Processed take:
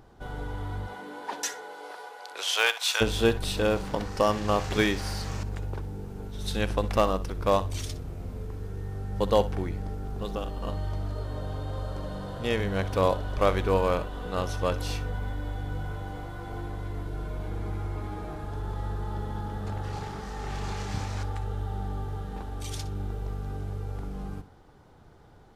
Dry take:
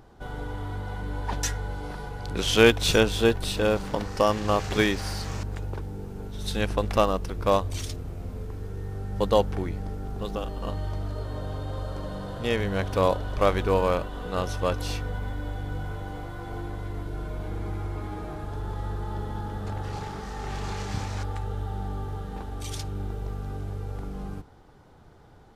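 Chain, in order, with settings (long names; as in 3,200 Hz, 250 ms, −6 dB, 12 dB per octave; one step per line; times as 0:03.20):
0:00.86–0:03.00: high-pass filter 210 Hz → 860 Hz 24 dB per octave
hard clipping −9.5 dBFS, distortion −32 dB
flutter between parallel walls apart 10.7 metres, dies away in 0.24 s
level −1.5 dB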